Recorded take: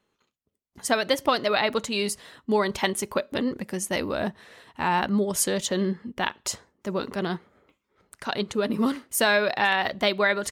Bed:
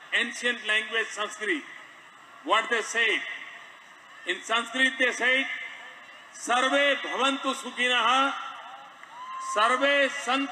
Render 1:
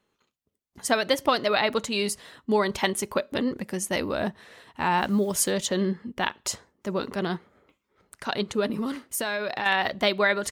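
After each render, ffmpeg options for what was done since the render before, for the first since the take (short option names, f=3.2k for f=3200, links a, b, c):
-filter_complex "[0:a]asplit=3[a][b][c];[a]afade=t=out:st=4.98:d=0.02[d];[b]acrusher=bits=7:mix=0:aa=0.5,afade=t=in:st=4.98:d=0.02,afade=t=out:st=5.5:d=0.02[e];[c]afade=t=in:st=5.5:d=0.02[f];[d][e][f]amix=inputs=3:normalize=0,asettb=1/sr,asplit=3[g][h][i];[g]atrim=end=8.684[j];[h]atrim=start=8.68:end=9.66,asetpts=PTS-STARTPTS,afade=t=in:d=0.004:c=qsin,afade=t=out:st=0.976:d=0.004:c=qsin,acompressor=threshold=-25dB:ratio=5:attack=3.2:release=140:knee=1:detection=peak[k];[i]atrim=start=9.656[l];[j][k]acrossfade=d=0.004:c1=hsin:c2=qsin[m];[m][l]acrossfade=d=0.004:c1=qsin:c2=hsin"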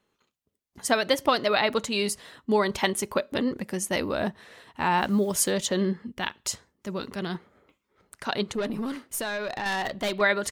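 -filter_complex "[0:a]asettb=1/sr,asplit=3[a][b][c];[a]atrim=end=6.074[d];[b]atrim=start=6.07:end=7.35,asetpts=PTS-STARTPTS,afade=t=in:d=0.004:c=qsin,afade=t=out:st=1.276:d=0.004:c=qsin,equalizer=f=640:t=o:w=2.9:g=-6[e];[c]atrim=start=7.346[f];[d][e]acrossfade=d=0.004:c1=hsin:c2=qsin[g];[g][f]acrossfade=d=0.004:c1=qsin:c2=hsin,asettb=1/sr,asplit=3[h][i][j];[h]atrim=end=8.534[k];[i]atrim=start=8.53:end=10.21,asetpts=PTS-STARTPTS,afade=t=in:d=0.004:c=qsin,afade=t=out:st=1.676:d=0.004:c=qsin,aeval=exprs='(tanh(14.1*val(0)+0.2)-tanh(0.2))/14.1':c=same[l];[j]atrim=start=10.206[m];[k][l]acrossfade=d=0.004:c1=hsin:c2=qsin[n];[n][m]acrossfade=d=0.004:c1=qsin:c2=hsin"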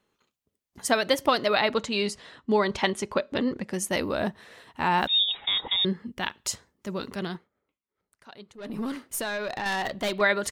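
-filter_complex "[0:a]asettb=1/sr,asplit=3[a][b][c];[a]atrim=end=1.724[d];[b]atrim=start=1.72:end=3.73,asetpts=PTS-STARTPTS,afade=t=in:d=0.004:c=qsin,afade=t=out:st=2.006:d=0.004:c=qsin,lowpass=6k[e];[c]atrim=start=3.726[f];[d][e]acrossfade=d=0.004:c1=hsin:c2=qsin[g];[g][f]acrossfade=d=0.004:c1=qsin:c2=hsin,asettb=1/sr,asplit=3[h][i][j];[h]atrim=end=5.074[k];[i]atrim=start=5.07:end=5.85,asetpts=PTS-STARTPTS,afade=t=in:d=0.004:c=qsin,afade=t=out:st=0.776:d=0.004:c=qsin,lowpass=f=3.3k:t=q:w=0.5098,lowpass=f=3.3k:t=q:w=0.6013,lowpass=f=3.3k:t=q:w=0.9,lowpass=f=3.3k:t=q:w=2.563,afreqshift=-3900[l];[j]atrim=start=5.846[m];[k][l]acrossfade=d=0.004:c1=hsin:c2=qsin[n];[n][m]acrossfade=d=0.004:c1=qsin:c2=hsin,asplit=3[o][p][q];[o]atrim=end=7.48,asetpts=PTS-STARTPTS,afade=t=out:st=7.25:d=0.23:silence=0.11885[r];[p]atrim=start=7.48:end=8.58,asetpts=PTS-STARTPTS,volume=-18.5dB[s];[q]atrim=start=8.58,asetpts=PTS-STARTPTS,afade=t=in:d=0.23:silence=0.11885[t];[r][s][t]concat=n=3:v=0:a=1"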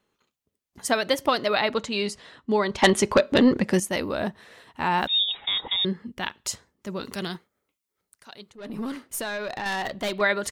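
-filter_complex "[0:a]asettb=1/sr,asplit=3[a][b][c];[a]atrim=end=2.824[d];[b]atrim=start=2.82:end=3.8,asetpts=PTS-STARTPTS,afade=t=in:d=0.004:c=qsin,afade=t=out:st=0.976:d=0.004:c=qsin,aeval=exprs='0.355*sin(PI/2*2*val(0)/0.355)':c=same[e];[c]atrim=start=3.796[f];[d][e]acrossfade=d=0.004:c1=hsin:c2=qsin[g];[g][f]acrossfade=d=0.004:c1=qsin:c2=hsin,asettb=1/sr,asplit=3[h][i][j];[h]atrim=end=7.054[k];[i]atrim=start=7.05:end=8.5,asetpts=PTS-STARTPTS,afade=t=in:d=0.004:c=qsin,afade=t=out:st=1.446:d=0.004:c=qsin,highshelf=f=3.5k:g=11.5[l];[j]atrim=start=8.496[m];[k][l]acrossfade=d=0.004:c1=hsin:c2=qsin[n];[n][m]acrossfade=d=0.004:c1=qsin:c2=hsin"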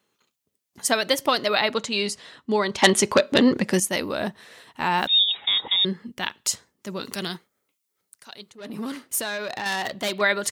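-af "highpass=100,highshelf=f=2.9k:g=7"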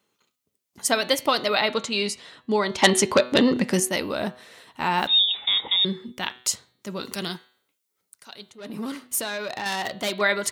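-af "bandreject=f=1.7k:w=19,bandreject=f=124.7:t=h:w=4,bandreject=f=249.4:t=h:w=4,bandreject=f=374.1:t=h:w=4,bandreject=f=498.8:t=h:w=4,bandreject=f=623.5:t=h:w=4,bandreject=f=748.2:t=h:w=4,bandreject=f=872.9:t=h:w=4,bandreject=f=997.6:t=h:w=4,bandreject=f=1.1223k:t=h:w=4,bandreject=f=1.247k:t=h:w=4,bandreject=f=1.3717k:t=h:w=4,bandreject=f=1.4964k:t=h:w=4,bandreject=f=1.6211k:t=h:w=4,bandreject=f=1.7458k:t=h:w=4,bandreject=f=1.8705k:t=h:w=4,bandreject=f=1.9952k:t=h:w=4,bandreject=f=2.1199k:t=h:w=4,bandreject=f=2.2446k:t=h:w=4,bandreject=f=2.3693k:t=h:w=4,bandreject=f=2.494k:t=h:w=4,bandreject=f=2.6187k:t=h:w=4,bandreject=f=2.7434k:t=h:w=4,bandreject=f=2.8681k:t=h:w=4,bandreject=f=2.9928k:t=h:w=4,bandreject=f=3.1175k:t=h:w=4,bandreject=f=3.2422k:t=h:w=4,bandreject=f=3.3669k:t=h:w=4,bandreject=f=3.4916k:t=h:w=4,bandreject=f=3.6163k:t=h:w=4,bandreject=f=3.741k:t=h:w=4,bandreject=f=3.8657k:t=h:w=4,bandreject=f=3.9904k:t=h:w=4,bandreject=f=4.1151k:t=h:w=4,bandreject=f=4.2398k:t=h:w=4,bandreject=f=4.3645k:t=h:w=4,bandreject=f=4.4892k:t=h:w=4"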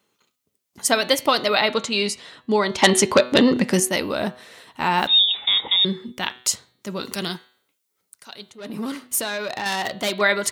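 -af "volume=3dB,alimiter=limit=-1dB:level=0:latency=1"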